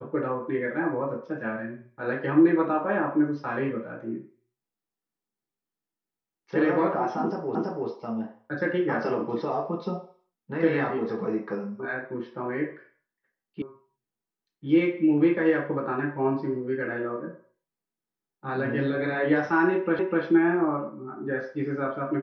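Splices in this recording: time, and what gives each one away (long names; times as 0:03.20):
0:07.55: the same again, the last 0.33 s
0:13.62: cut off before it has died away
0:19.99: the same again, the last 0.25 s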